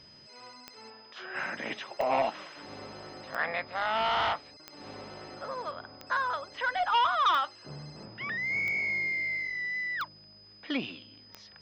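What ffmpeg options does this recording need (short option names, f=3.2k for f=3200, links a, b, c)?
-af "adeclick=t=4,bandreject=f=5k:w=30"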